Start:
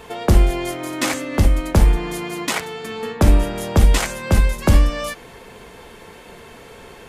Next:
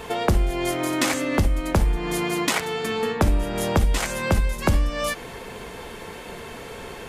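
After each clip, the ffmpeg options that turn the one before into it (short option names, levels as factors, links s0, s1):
-af "acompressor=threshold=0.0631:ratio=3,volume=1.58"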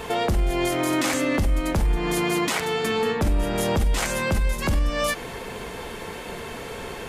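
-af "alimiter=limit=0.141:level=0:latency=1:release=18,volume=1.33"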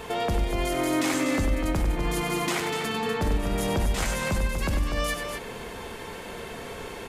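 -af "aecho=1:1:96.21|244.9:0.447|0.447,volume=0.596"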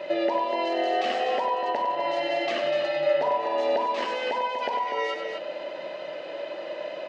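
-af "afftfilt=real='real(if(between(b,1,1008),(2*floor((b-1)/48)+1)*48-b,b),0)':imag='imag(if(between(b,1,1008),(2*floor((b-1)/48)+1)*48-b,b),0)*if(between(b,1,1008),-1,1)':win_size=2048:overlap=0.75,highpass=f=240:w=0.5412,highpass=f=240:w=1.3066,equalizer=f=590:t=q:w=4:g=10,equalizer=f=850:t=q:w=4:g=-9,equalizer=f=1400:t=q:w=4:g=-6,equalizer=f=3700:t=q:w=4:g=-4,lowpass=f=4200:w=0.5412,lowpass=f=4200:w=1.3066"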